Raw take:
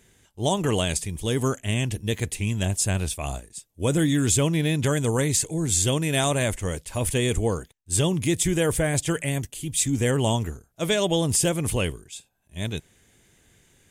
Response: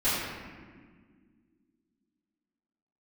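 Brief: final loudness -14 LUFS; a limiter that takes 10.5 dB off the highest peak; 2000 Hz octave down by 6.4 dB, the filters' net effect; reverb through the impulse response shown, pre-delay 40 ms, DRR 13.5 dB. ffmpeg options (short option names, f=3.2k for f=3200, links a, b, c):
-filter_complex "[0:a]equalizer=f=2k:t=o:g=-8.5,alimiter=limit=-21.5dB:level=0:latency=1,asplit=2[a][b];[1:a]atrim=start_sample=2205,adelay=40[c];[b][c]afir=irnorm=-1:irlink=0,volume=-26.5dB[d];[a][d]amix=inputs=2:normalize=0,volume=17.5dB"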